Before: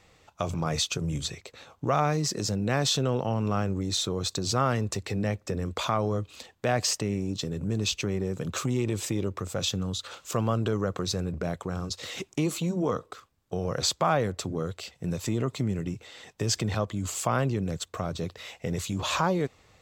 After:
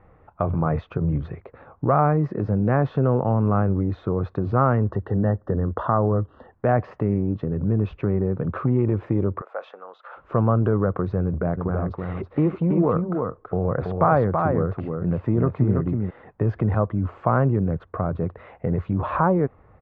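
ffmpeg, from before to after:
ffmpeg -i in.wav -filter_complex "[0:a]asettb=1/sr,asplit=3[link_01][link_02][link_03];[link_01]atrim=end=4.844[link_04];[link_02]atrim=start=4.84:end=6.53,asetpts=PTS-STARTPTS,afade=type=in:duration=0.004:curve=qsin,afade=type=out:start_time=1.686:duration=0.004:curve=qsin,asuperstop=centerf=2300:order=20:qfactor=3.1[link_05];[link_03]atrim=start=6.526[link_06];[link_04][link_05]acrossfade=duration=0.004:curve1=hsin:curve2=qsin[link_07];[link_07][link_06]acrossfade=duration=0.004:curve1=qsin:curve2=hsin,asplit=3[link_08][link_09][link_10];[link_08]afade=type=out:start_time=9.4:duration=0.02[link_11];[link_09]highpass=frequency=580:width=0.5412,highpass=frequency=580:width=1.3066,afade=type=in:start_time=9.4:duration=0.02,afade=type=out:start_time=10.16:duration=0.02[link_12];[link_10]afade=type=in:start_time=10.16:duration=0.02[link_13];[link_11][link_12][link_13]amix=inputs=3:normalize=0,asplit=3[link_14][link_15][link_16];[link_14]afade=type=out:start_time=11.56:duration=0.02[link_17];[link_15]aecho=1:1:328:0.596,afade=type=in:start_time=11.56:duration=0.02,afade=type=out:start_time=16.09:duration=0.02[link_18];[link_16]afade=type=in:start_time=16.09:duration=0.02[link_19];[link_17][link_18][link_19]amix=inputs=3:normalize=0,deesser=0.5,lowpass=frequency=1500:width=0.5412,lowpass=frequency=1500:width=1.3066,lowshelf=frequency=84:gain=6,volume=6dB" out.wav

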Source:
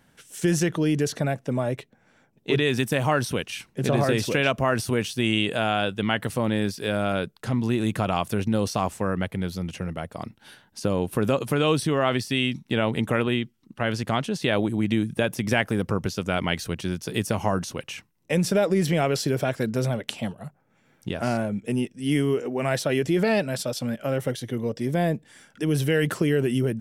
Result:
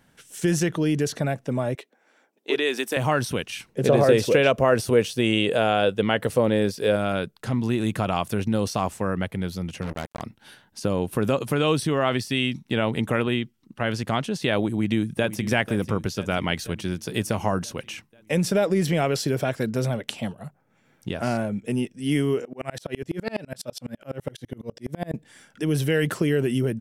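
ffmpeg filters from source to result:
ffmpeg -i in.wav -filter_complex "[0:a]asettb=1/sr,asplit=3[link_01][link_02][link_03];[link_01]atrim=end=1.754[link_04];[link_02]atrim=start=1.75:end=2.97,asetpts=PTS-STARTPTS,afade=type=in:duration=0.004:curve=qsin,afade=type=out:start_time=1.216:duration=0.004:curve=qsin,highpass=frequency=300:width=0.5412,highpass=frequency=300:width=1.3066[link_05];[link_03]atrim=start=2.966[link_06];[link_04][link_05]acrossfade=duration=0.004:curve1=hsin:curve2=qsin[link_07];[link_07][link_06]acrossfade=duration=0.004:curve1=qsin:curve2=hsin,asettb=1/sr,asplit=3[link_08][link_09][link_10];[link_08]atrim=end=3.694[link_11];[link_09]atrim=start=3.69:end=6.96,asetpts=PTS-STARTPTS,afade=type=in:duration=0.004:curve=qsin,afade=type=out:start_time=3.266:duration=0.004:curve=qsin,equalizer=frequency=490:width_type=o:width=0.66:gain=10[link_12];[link_10]atrim=start=6.956[link_13];[link_11][link_12]acrossfade=duration=0.004:curve1=hsin:curve2=qsin[link_14];[link_14][link_13]acrossfade=duration=0.004:curve1=qsin:curve2=hsin,asplit=3[link_15][link_16][link_17];[link_15]afade=type=out:start_time=9.81:duration=0.02[link_18];[link_16]acrusher=bits=4:mix=0:aa=0.5,afade=type=in:start_time=9.81:duration=0.02,afade=type=out:start_time=10.21:duration=0.02[link_19];[link_17]afade=type=in:start_time=10.21:duration=0.02[link_20];[link_18][link_19][link_20]amix=inputs=3:normalize=0,asplit=2[link_21][link_22];[link_22]afade=type=in:start_time=14.73:duration=0.01,afade=type=out:start_time=15.41:duration=0.01,aecho=0:1:490|980|1470|1960|2450|2940|3430:0.199526|0.129692|0.0842998|0.0547949|0.0356167|0.0231508|0.015048[link_23];[link_21][link_23]amix=inputs=2:normalize=0,asettb=1/sr,asplit=3[link_24][link_25][link_26];[link_24]atrim=end=22.454[link_27];[link_25]atrim=start=22.45:end=25.14,asetpts=PTS-STARTPTS,afade=type=in:duration=0.004:curve=qsin,afade=type=out:start_time=2.686:duration=0.004:curve=qsin,aeval=exprs='val(0)*pow(10,-32*if(lt(mod(-12*n/s,1),2*abs(-12)/1000),1-mod(-12*n/s,1)/(2*abs(-12)/1000),(mod(-12*n/s,1)-2*abs(-12)/1000)/(1-2*abs(-12)/1000))/20)':channel_layout=same[link_28];[link_26]atrim=start=25.136[link_29];[link_27][link_28]acrossfade=duration=0.004:curve1=hsin:curve2=qsin[link_30];[link_30][link_29]acrossfade=duration=0.004:curve1=qsin:curve2=hsin" out.wav

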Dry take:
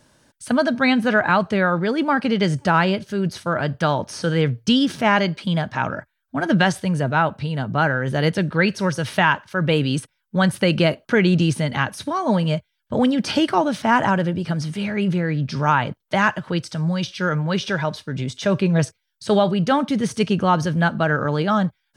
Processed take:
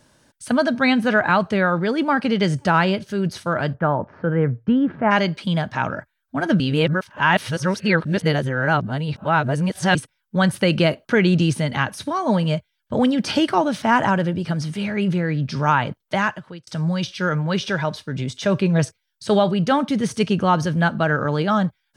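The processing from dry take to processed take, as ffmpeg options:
ffmpeg -i in.wav -filter_complex "[0:a]asplit=3[link_01][link_02][link_03];[link_01]afade=type=out:start_time=3.73:duration=0.02[link_04];[link_02]lowpass=frequency=1700:width=0.5412,lowpass=frequency=1700:width=1.3066,afade=type=in:start_time=3.73:duration=0.02,afade=type=out:start_time=5.1:duration=0.02[link_05];[link_03]afade=type=in:start_time=5.1:duration=0.02[link_06];[link_04][link_05][link_06]amix=inputs=3:normalize=0,asplit=4[link_07][link_08][link_09][link_10];[link_07]atrim=end=6.602[link_11];[link_08]atrim=start=6.598:end=9.952,asetpts=PTS-STARTPTS,areverse[link_12];[link_09]atrim=start=9.948:end=16.67,asetpts=PTS-STARTPTS,afade=type=out:start_time=6.112:duration=0.61[link_13];[link_10]atrim=start=16.67,asetpts=PTS-STARTPTS,afade=type=in:duration=0.004:curve=hsin[link_14];[link_11][link_12]acrossfade=duration=0.004:curve1=hsin:curve2=hsin[link_15];[link_13][link_14]concat=n=2:v=0:a=1[link_16];[link_15][link_16]acrossfade=duration=0.004:curve1=hsin:curve2=hsin" out.wav

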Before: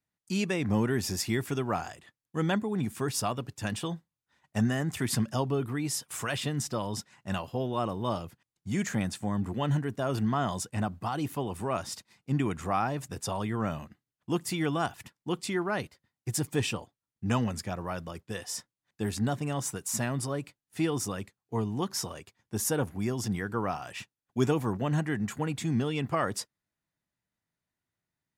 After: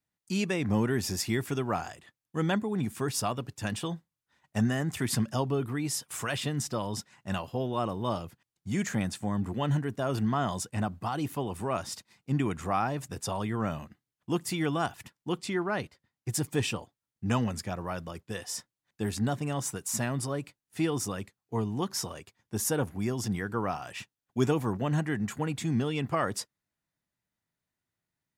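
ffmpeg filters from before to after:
ffmpeg -i in.wav -filter_complex "[0:a]asettb=1/sr,asplit=3[link_01][link_02][link_03];[link_01]atrim=end=15.384[link_04];[link_02]atrim=start=15.38:end=16.29,asetpts=PTS-STARTPTS,afade=type=in:duration=0.004:curve=qsin,afade=type=out:start_time=0.906:duration=0.004:curve=qsin,highshelf=frequency=8400:gain=-8[link_05];[link_03]atrim=start=16.286[link_06];[link_04][link_05]acrossfade=duration=0.004:curve1=hsin:curve2=qsin[link_07];[link_07][link_06]acrossfade=duration=0.004:curve1=qsin:curve2=hsin" out.wav

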